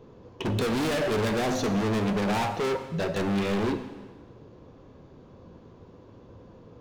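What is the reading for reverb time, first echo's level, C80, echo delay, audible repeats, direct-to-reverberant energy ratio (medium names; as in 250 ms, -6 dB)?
1.4 s, no echo, 11.5 dB, no echo, no echo, 8.5 dB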